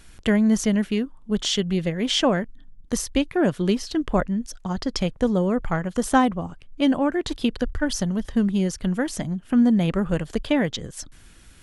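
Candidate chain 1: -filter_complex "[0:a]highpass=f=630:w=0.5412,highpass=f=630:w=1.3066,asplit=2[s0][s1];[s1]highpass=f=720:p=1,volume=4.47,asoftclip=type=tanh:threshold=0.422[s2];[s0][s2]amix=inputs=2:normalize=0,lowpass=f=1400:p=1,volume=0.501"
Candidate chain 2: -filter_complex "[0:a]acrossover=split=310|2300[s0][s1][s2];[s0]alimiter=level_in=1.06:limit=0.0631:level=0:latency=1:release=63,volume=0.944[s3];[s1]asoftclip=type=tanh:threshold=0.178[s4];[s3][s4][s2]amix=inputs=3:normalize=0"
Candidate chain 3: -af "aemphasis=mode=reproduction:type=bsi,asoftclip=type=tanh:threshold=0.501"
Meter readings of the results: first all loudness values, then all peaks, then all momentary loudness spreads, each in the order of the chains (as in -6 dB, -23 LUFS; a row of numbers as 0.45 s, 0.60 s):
-29.0 LUFS, -26.0 LUFS, -20.0 LUFS; -9.0 dBFS, -10.5 dBFS, -6.5 dBFS; 13 LU, 7 LU, 8 LU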